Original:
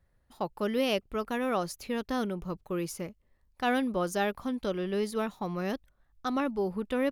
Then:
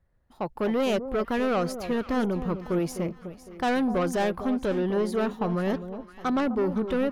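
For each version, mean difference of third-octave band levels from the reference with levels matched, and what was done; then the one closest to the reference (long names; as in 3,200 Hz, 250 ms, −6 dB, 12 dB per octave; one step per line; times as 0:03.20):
5.5 dB: high-shelf EQ 3,100 Hz −10.5 dB
automatic gain control gain up to 9 dB
soft clipping −21 dBFS, distortion −11 dB
on a send: delay that swaps between a low-pass and a high-pass 254 ms, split 990 Hz, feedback 60%, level −10 dB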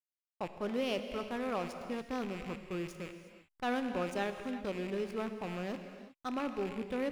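7.5 dB: loose part that buzzes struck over −46 dBFS, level −29 dBFS
low-pass filter 9,900 Hz 12 dB per octave
slack as between gear wheels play −34.5 dBFS
reverb whose tail is shaped and stops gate 390 ms flat, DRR 7 dB
level −6 dB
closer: first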